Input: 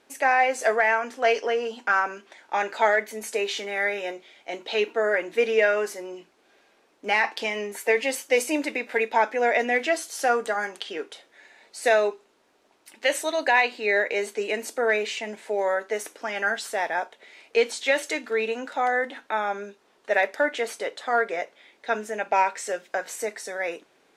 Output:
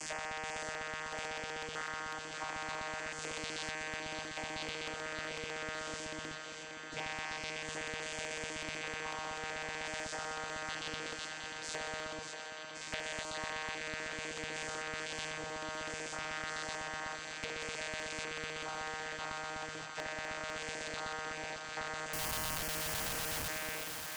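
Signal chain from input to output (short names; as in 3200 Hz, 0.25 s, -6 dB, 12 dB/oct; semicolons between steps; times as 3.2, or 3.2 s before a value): spectral dilation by 0.24 s; compressor 12:1, threshold -31 dBFS, peak gain reduction 20.5 dB; requantised 8-bit, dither none; low shelf 180 Hz -11.5 dB; vocoder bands 16, saw 156 Hz; 22.13–23.48 Schmitt trigger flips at -37 dBFS; LFO notch square 8 Hz 310–3700 Hz; bell 360 Hz -13.5 dB 1.1 oct; on a send: thinning echo 0.584 s, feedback 74%, high-pass 420 Hz, level -11 dB; on the sum: spectral compressor 2:1; gain +2 dB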